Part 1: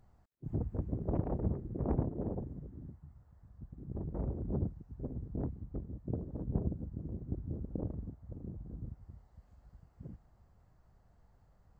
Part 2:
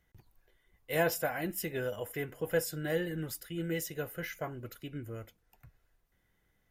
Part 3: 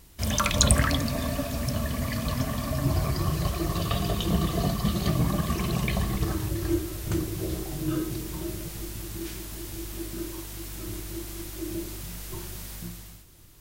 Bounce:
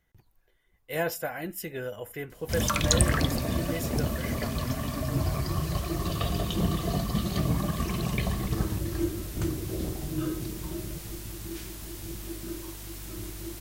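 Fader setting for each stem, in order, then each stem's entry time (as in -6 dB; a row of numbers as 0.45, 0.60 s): +1.0, 0.0, -2.5 dB; 2.05, 0.00, 2.30 s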